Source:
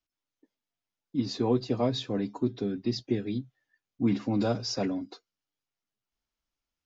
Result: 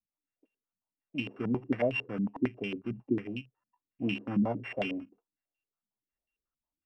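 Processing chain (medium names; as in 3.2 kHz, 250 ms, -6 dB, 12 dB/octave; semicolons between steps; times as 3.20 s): sorted samples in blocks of 16 samples; step-sequenced low-pass 11 Hz 210–2800 Hz; trim -7.5 dB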